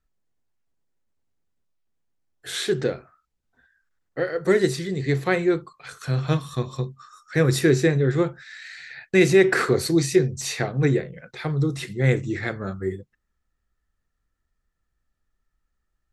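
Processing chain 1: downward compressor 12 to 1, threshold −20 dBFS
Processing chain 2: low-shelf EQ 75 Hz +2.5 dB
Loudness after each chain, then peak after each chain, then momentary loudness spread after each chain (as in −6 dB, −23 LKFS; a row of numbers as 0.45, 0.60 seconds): −27.5, −22.5 LKFS; −10.5, −4.5 dBFS; 13, 19 LU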